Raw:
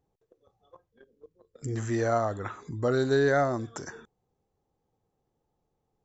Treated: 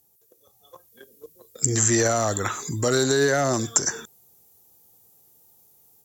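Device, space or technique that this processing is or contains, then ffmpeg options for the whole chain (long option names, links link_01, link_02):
FM broadcast chain: -filter_complex "[0:a]highpass=73,dynaudnorm=framelen=500:gausssize=3:maxgain=6dB,acrossover=split=410|2000[link_01][link_02][link_03];[link_01]acompressor=threshold=-23dB:ratio=4[link_04];[link_02]acompressor=threshold=-23dB:ratio=4[link_05];[link_03]acompressor=threshold=-42dB:ratio=4[link_06];[link_04][link_05][link_06]amix=inputs=3:normalize=0,aemphasis=mode=production:type=75fm,alimiter=limit=-15dB:level=0:latency=1:release=33,asoftclip=type=hard:threshold=-16.5dB,lowpass=frequency=15000:width=0.5412,lowpass=frequency=15000:width=1.3066,aemphasis=mode=production:type=75fm,volume=3.5dB"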